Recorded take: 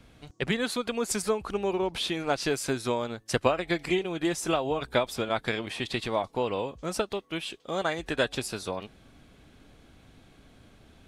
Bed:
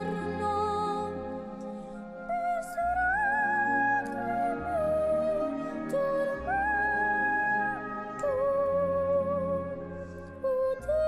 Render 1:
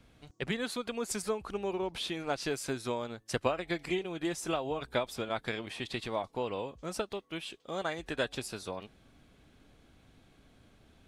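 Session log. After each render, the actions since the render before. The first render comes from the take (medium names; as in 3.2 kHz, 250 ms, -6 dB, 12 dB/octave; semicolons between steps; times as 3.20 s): trim -6 dB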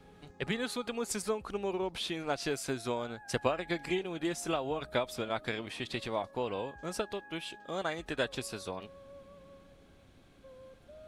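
add bed -25.5 dB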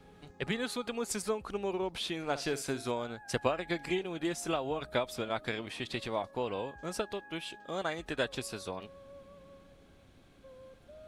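2.17–2.91 s: flutter echo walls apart 9.7 m, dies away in 0.24 s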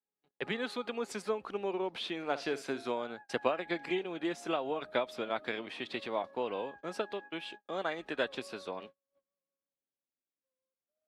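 gate -46 dBFS, range -41 dB; three-band isolator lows -21 dB, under 190 Hz, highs -14 dB, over 4.4 kHz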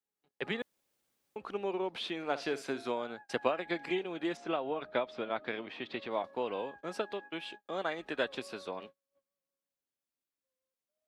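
0.62–1.36 s: room tone; 4.37–6.11 s: distance through air 140 m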